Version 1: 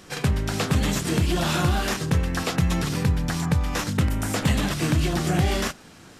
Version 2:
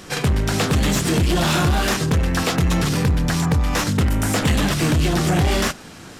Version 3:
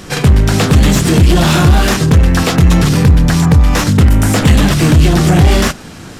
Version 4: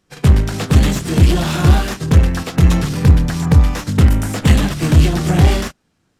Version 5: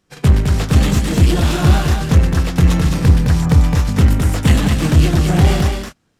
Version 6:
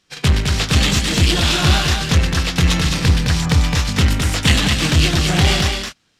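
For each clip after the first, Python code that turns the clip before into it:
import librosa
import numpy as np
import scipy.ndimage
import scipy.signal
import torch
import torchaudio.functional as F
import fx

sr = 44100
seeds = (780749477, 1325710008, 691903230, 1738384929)

y1 = 10.0 ** (-21.0 / 20.0) * np.tanh(x / 10.0 ** (-21.0 / 20.0))
y1 = F.gain(torch.from_numpy(y1), 8.0).numpy()
y2 = fx.low_shelf(y1, sr, hz=240.0, db=6.0)
y2 = F.gain(torch.from_numpy(y2), 6.0).numpy()
y3 = fx.upward_expand(y2, sr, threshold_db=-26.0, expansion=2.5)
y4 = y3 + 10.0 ** (-5.0 / 20.0) * np.pad(y3, (int(212 * sr / 1000.0), 0))[:len(y3)]
y4 = F.gain(torch.from_numpy(y4), -1.0).numpy()
y5 = fx.peak_eq(y4, sr, hz=3800.0, db=14.0, octaves=2.7)
y5 = F.gain(torch.from_numpy(y5), -4.0).numpy()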